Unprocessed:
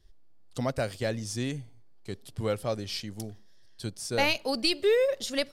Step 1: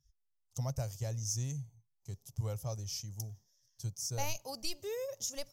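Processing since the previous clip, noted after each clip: EQ curve 140 Hz 0 dB, 230 Hz -19 dB, 370 Hz -18 dB, 920 Hz -9 dB, 1600 Hz -21 dB, 2600 Hz -17 dB, 4200 Hz -17 dB, 6200 Hz +7 dB, 8900 Hz -10 dB, 14000 Hz +6 dB; spectral noise reduction 28 dB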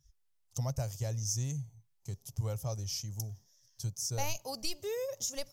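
in parallel at 0 dB: compressor, threshold -46 dBFS, peak gain reduction 15.5 dB; on the sum: wow and flutter 22 cents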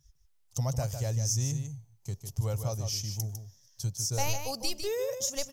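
echo 0.152 s -8 dB; gain +4 dB

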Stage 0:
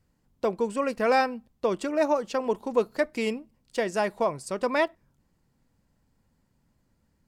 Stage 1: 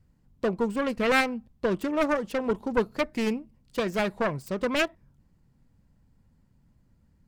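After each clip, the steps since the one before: self-modulated delay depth 0.4 ms; tone controls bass +9 dB, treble -3 dB; gain -1 dB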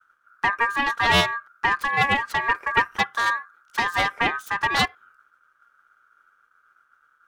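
expander -58 dBFS; ring modulator 1400 Hz; gain +7 dB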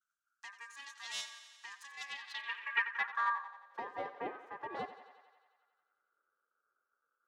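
thinning echo 89 ms, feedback 72%, high-pass 310 Hz, level -12.5 dB; band-pass sweep 6900 Hz -> 470 Hz, 1.95–3.9; gain -7.5 dB

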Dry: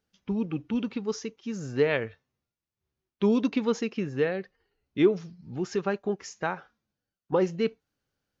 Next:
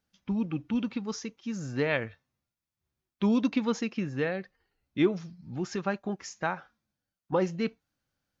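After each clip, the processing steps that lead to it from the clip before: bell 420 Hz -9.5 dB 0.32 oct; notch 2900 Hz, Q 27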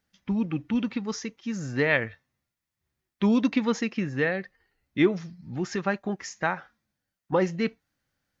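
bell 1900 Hz +7 dB 0.33 oct; gain +3 dB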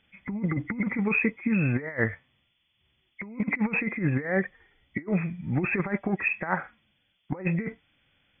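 nonlinear frequency compression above 1900 Hz 4:1; negative-ratio compressor -30 dBFS, ratio -0.5; gain +4 dB

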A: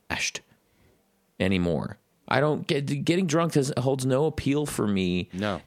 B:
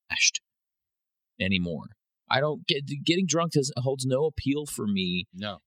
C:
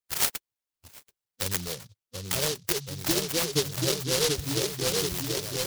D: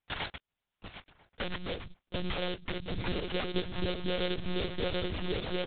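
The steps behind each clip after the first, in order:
per-bin expansion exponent 2; band shelf 4200 Hz +9 dB; gain +1.5 dB
fixed phaser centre 1100 Hz, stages 8; on a send: repeats that get brighter 0.733 s, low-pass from 750 Hz, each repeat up 1 oct, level -3 dB; on the sum: noise-modulated delay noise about 4500 Hz, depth 0.3 ms
compressor 5:1, threshold -37 dBFS, peak gain reduction 15.5 dB; monotone LPC vocoder at 8 kHz 180 Hz; outdoor echo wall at 170 m, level -23 dB; gain +8.5 dB

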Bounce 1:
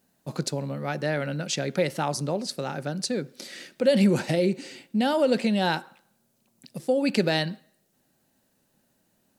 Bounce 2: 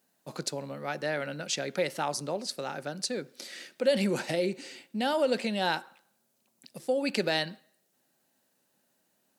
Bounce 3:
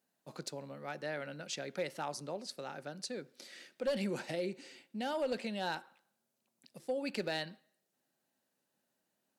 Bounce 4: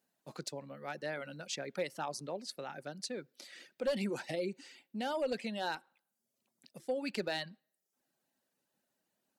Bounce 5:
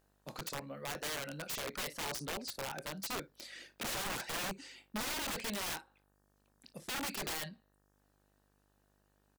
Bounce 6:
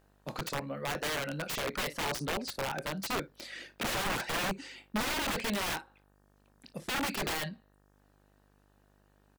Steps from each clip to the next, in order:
HPF 420 Hz 6 dB/oct; gain -2 dB
high shelf 6200 Hz -4 dB; one-sided clip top -21 dBFS; gain -8 dB
reverb removal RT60 0.62 s; gain +1 dB
early reflections 26 ms -12.5 dB, 57 ms -18 dB; wrapped overs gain 35.5 dB; buzz 50 Hz, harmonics 37, -77 dBFS -4 dB/oct; gain +2.5 dB
tone controls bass +1 dB, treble -6 dB; gain +7 dB

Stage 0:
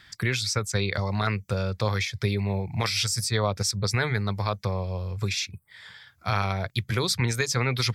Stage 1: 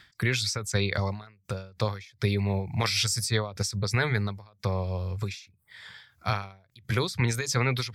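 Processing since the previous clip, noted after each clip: ending taper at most 120 dB/s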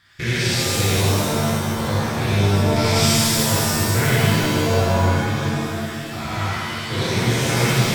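stepped spectrum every 0.2 s; hard clip -22 dBFS, distortion -23 dB; shimmer reverb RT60 2.2 s, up +7 st, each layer -2 dB, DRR -8.5 dB; gain +1.5 dB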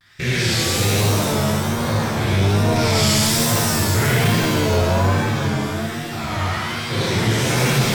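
soft clip -11 dBFS, distortion -19 dB; vibrato 1.2 Hz 96 cents; gain +2 dB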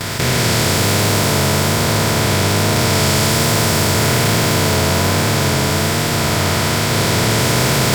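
per-bin compression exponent 0.2; gain -4.5 dB

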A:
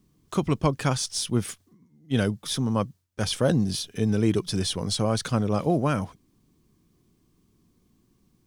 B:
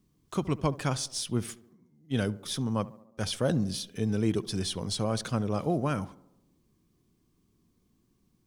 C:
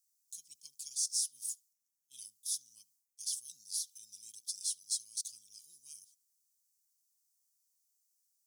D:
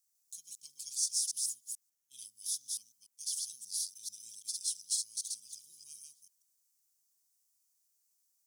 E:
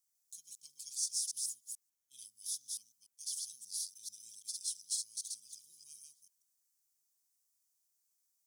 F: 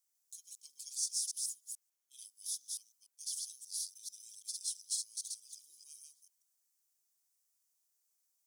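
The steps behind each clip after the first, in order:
tape echo 70 ms, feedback 69%, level -17 dB, low-pass 1400 Hz; gain -5 dB
inverse Chebyshev high-pass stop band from 1800 Hz, stop band 60 dB; gain +4.5 dB
reverse delay 0.146 s, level -2 dB
notch 2800 Hz, Q 18; gain -3.5 dB
HPF 320 Hz 24 dB/oct

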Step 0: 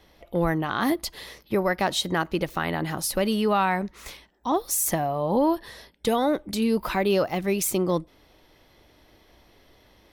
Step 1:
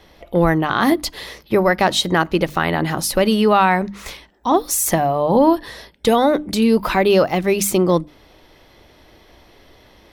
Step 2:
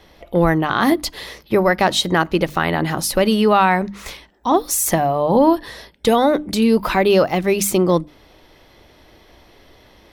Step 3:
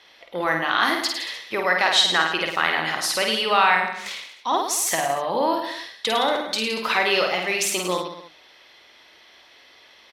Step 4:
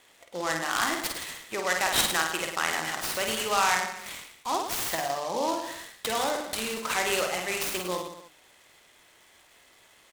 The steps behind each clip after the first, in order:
high shelf 8600 Hz -5.5 dB; notches 50/100/150/200/250/300 Hz; gain +8.5 dB
nothing audible
band-pass 3000 Hz, Q 0.72; reverse bouncing-ball echo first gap 50 ms, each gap 1.1×, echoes 5; gain +2 dB
noise-modulated delay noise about 4500 Hz, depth 0.045 ms; gain -6.5 dB

